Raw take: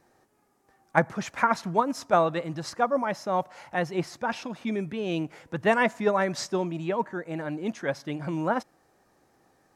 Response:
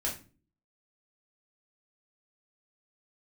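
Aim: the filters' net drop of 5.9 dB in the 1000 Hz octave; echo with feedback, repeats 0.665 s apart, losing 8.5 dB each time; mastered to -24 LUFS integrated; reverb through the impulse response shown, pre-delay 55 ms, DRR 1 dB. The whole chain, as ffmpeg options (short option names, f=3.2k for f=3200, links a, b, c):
-filter_complex "[0:a]equalizer=f=1k:t=o:g=-8,aecho=1:1:665|1330|1995|2660:0.376|0.143|0.0543|0.0206,asplit=2[a][b];[1:a]atrim=start_sample=2205,adelay=55[c];[b][c]afir=irnorm=-1:irlink=0,volume=-5.5dB[d];[a][d]amix=inputs=2:normalize=0,volume=3dB"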